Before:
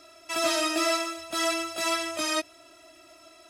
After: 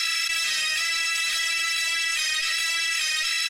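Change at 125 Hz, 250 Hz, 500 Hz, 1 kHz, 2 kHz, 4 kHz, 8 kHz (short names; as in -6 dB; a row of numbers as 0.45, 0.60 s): n/a, under -25 dB, -22.0 dB, -6.0 dB, +10.0 dB, +8.5 dB, +6.5 dB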